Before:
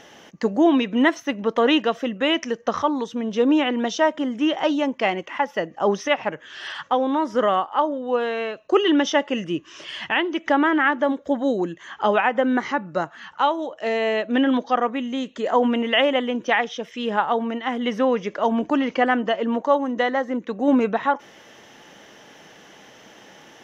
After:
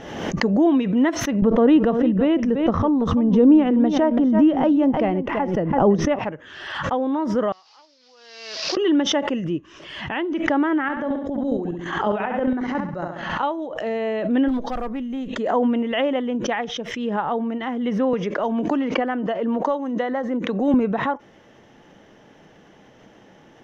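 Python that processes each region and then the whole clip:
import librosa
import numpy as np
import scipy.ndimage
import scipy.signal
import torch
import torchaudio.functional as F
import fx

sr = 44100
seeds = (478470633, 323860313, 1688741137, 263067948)

y = fx.chain(x, sr, fx.tilt_eq(slope=-3.0),
    fx.echo_single(ms=334, db=-13.0),
    fx.pre_swell(db_per_s=130.0), at=(1.42, 6.19))
y = fx.chain(y, sr, fx.delta_mod(bps=32000, step_db=-30.0),
    fx.bandpass_q(hz=5000.0, q=4.2), at=(7.52, 8.77))
y = fx.chain(y, sr, fx.echo_feedback(ms=64, feedback_pct=43, wet_db=-7.0),
    fx.chopper(hz=7.3, depth_pct=60, duty_pct=40),
    fx.sustainer(db_per_s=84.0), at=(10.83, 13.43))
y = fx.chain(y, sr, fx.block_float(bits=7),
    fx.tube_stage(drive_db=14.0, bias=0.45),
    fx.clip_hard(threshold_db=-19.5), at=(14.48, 15.28))
y = fx.chain(y, sr, fx.highpass(hz=240.0, slope=6),
    fx.band_squash(depth_pct=70), at=(18.13, 20.74))
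y = fx.tilt_eq(y, sr, slope=-3.0)
y = fx.pre_swell(y, sr, db_per_s=50.0)
y = F.gain(torch.from_numpy(y), -5.0).numpy()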